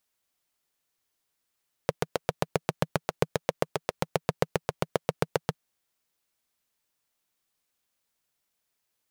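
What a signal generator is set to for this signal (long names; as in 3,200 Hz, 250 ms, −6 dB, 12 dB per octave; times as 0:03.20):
pulse-train model of a single-cylinder engine, steady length 3.68 s, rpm 900, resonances 160/460 Hz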